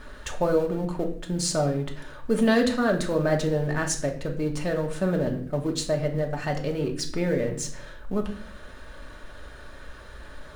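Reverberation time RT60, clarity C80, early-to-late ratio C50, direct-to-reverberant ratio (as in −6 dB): 0.55 s, 14.0 dB, 10.5 dB, 1.5 dB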